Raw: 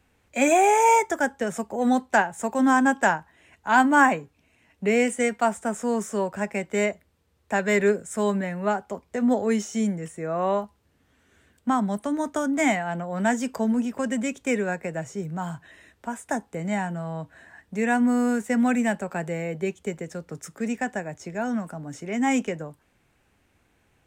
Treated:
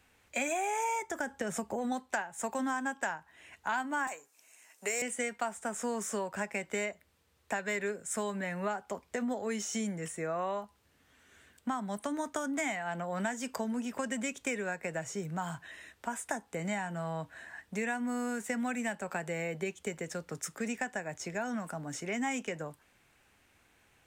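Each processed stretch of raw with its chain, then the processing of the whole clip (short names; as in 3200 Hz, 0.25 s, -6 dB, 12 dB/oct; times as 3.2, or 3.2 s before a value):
1.02–1.92 low shelf 380 Hz +7.5 dB + compressor, threshold -19 dBFS
4.07–5.02 HPF 520 Hz + resonant high shelf 4900 Hz +11 dB, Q 1.5 + hard clip -17.5 dBFS
whole clip: tilt shelf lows -4.5 dB, about 680 Hz; compressor 6:1, threshold -30 dBFS; gain -1.5 dB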